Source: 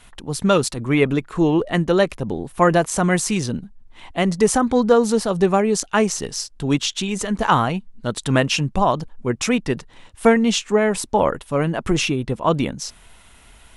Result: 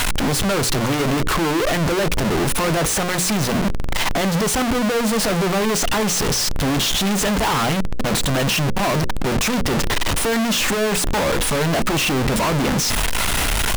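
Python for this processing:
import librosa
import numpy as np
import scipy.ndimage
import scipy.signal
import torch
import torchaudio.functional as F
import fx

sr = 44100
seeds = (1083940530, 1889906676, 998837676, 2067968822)

y = np.sign(x) * np.sqrt(np.mean(np.square(x)))
y = fx.high_shelf(y, sr, hz=6800.0, db=-4.5)
y = fx.hum_notches(y, sr, base_hz=60, count=9)
y = F.gain(torch.from_numpy(y), 2.0).numpy()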